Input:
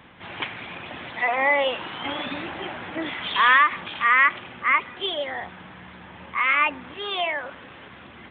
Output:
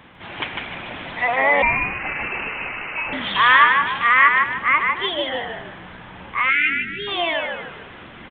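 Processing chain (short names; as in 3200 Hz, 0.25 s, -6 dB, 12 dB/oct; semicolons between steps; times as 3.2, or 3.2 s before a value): frequency-shifting echo 0.151 s, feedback 37%, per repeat -62 Hz, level -3.5 dB; 1.62–3.13 inverted band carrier 2900 Hz; 6.5–7.08 spectral delete 440–1300 Hz; gain +2.5 dB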